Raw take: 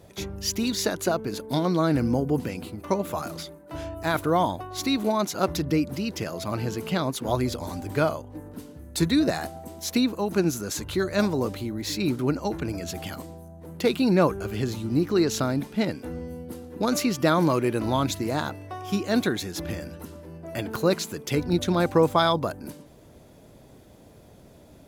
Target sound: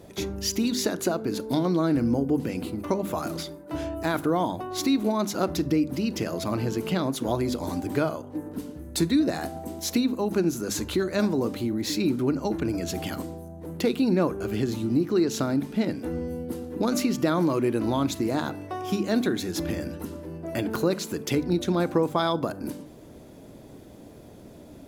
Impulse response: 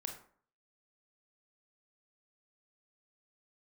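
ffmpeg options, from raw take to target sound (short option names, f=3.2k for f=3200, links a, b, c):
-filter_complex "[0:a]equalizer=f=280:t=o:w=1.2:g=6.5,bandreject=f=50:t=h:w=6,bandreject=f=100:t=h:w=6,bandreject=f=150:t=h:w=6,bandreject=f=200:t=h:w=6,bandreject=f=250:t=h:w=6,acompressor=threshold=-27dB:ratio=2,asplit=2[a][b];[1:a]atrim=start_sample=2205[c];[b][c]afir=irnorm=-1:irlink=0,volume=-9.5dB[d];[a][d]amix=inputs=2:normalize=0"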